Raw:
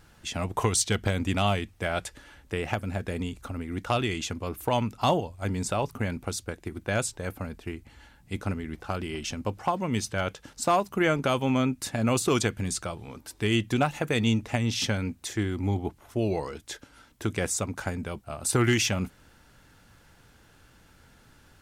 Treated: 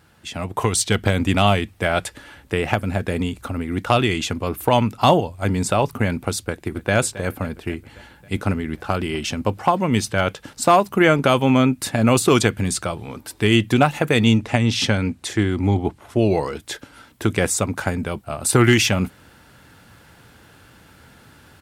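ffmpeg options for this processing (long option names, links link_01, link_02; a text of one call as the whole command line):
ffmpeg -i in.wav -filter_complex "[0:a]asplit=2[link_01][link_02];[link_02]afade=type=in:start_time=6.47:duration=0.01,afade=type=out:start_time=6.93:duration=0.01,aecho=0:1:270|540|810|1080|1350|1620|1890:0.16788|0.109122|0.0709295|0.0461042|0.0299677|0.019479|0.0126614[link_03];[link_01][link_03]amix=inputs=2:normalize=0,asettb=1/sr,asplit=3[link_04][link_05][link_06];[link_04]atrim=end=14.364[link_07];[link_05]atrim=start=14.36:end=16.31,asetpts=PTS-STARTPTS,afade=type=in:duration=0.004:curve=qsin,afade=type=out:start_time=1.946:duration=0.004:curve=qsin,lowpass=10000[link_08];[link_06]atrim=start=16.306[link_09];[link_07][link_08]acrossfade=duration=0.004:curve1=hsin:curve2=qsin[link_10];[link_10][link_09]acrossfade=duration=0.004:curve1=qsin:curve2=hsin,highpass=72,equalizer=frequency=6200:width_type=o:width=0.61:gain=-4.5,dynaudnorm=framelen=170:gausssize=9:maxgain=7dB,volume=2.5dB" out.wav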